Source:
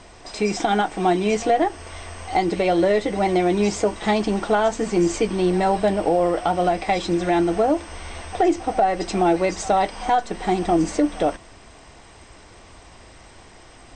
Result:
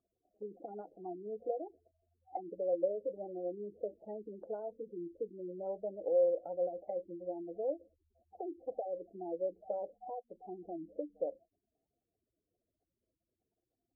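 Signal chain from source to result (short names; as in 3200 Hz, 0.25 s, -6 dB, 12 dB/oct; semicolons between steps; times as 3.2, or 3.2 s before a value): Wiener smoothing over 41 samples; spectral gate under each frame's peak -15 dB strong; low shelf 430 Hz +11.5 dB; auto-wah 530–1200 Hz, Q 13, down, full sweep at -15.5 dBFS; gain -8.5 dB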